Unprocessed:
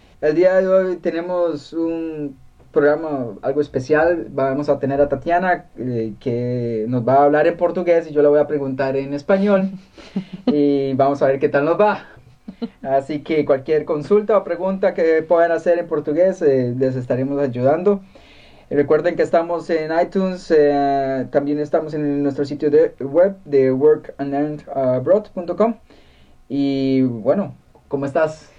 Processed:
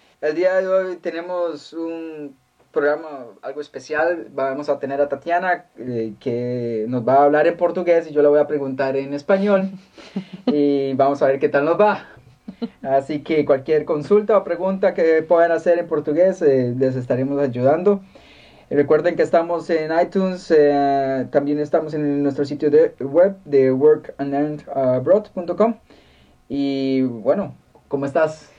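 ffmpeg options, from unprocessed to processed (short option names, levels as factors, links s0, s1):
-af "asetnsamples=n=441:p=0,asendcmd='3.02 highpass f 1400;3.99 highpass f 540;5.88 highpass f 190;11.74 highpass f 62;26.54 highpass f 240;27.43 highpass f 100',highpass=f=580:p=1"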